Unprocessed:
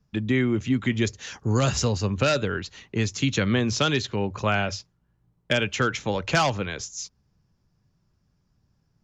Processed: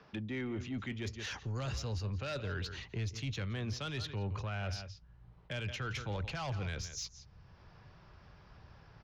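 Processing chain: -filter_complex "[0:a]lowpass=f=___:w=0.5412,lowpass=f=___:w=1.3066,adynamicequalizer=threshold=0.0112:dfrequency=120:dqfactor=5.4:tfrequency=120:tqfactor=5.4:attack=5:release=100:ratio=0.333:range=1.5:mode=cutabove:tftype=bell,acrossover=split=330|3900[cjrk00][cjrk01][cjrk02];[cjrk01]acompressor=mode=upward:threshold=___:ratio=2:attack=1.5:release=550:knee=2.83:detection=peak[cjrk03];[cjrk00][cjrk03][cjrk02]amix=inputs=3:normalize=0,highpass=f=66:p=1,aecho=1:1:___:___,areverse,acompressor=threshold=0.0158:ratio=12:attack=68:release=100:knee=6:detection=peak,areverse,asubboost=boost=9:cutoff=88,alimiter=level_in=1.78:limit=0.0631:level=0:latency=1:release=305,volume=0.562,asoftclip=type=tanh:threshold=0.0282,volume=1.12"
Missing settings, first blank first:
5600, 5600, 0.0158, 171, 0.133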